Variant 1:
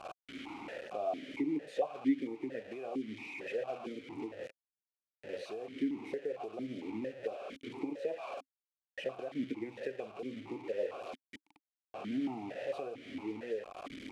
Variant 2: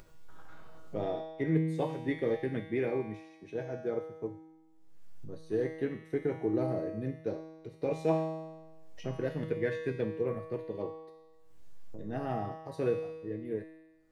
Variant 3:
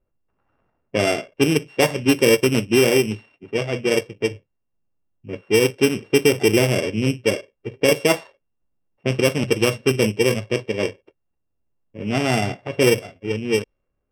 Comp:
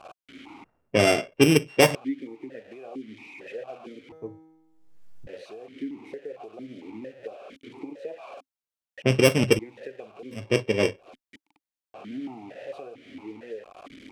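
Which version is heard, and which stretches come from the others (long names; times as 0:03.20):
1
0:00.64–0:01.95: punch in from 3
0:04.12–0:05.27: punch in from 2
0:09.02–0:09.59: punch in from 3
0:10.43–0:11.09: punch in from 3, crossfade 0.24 s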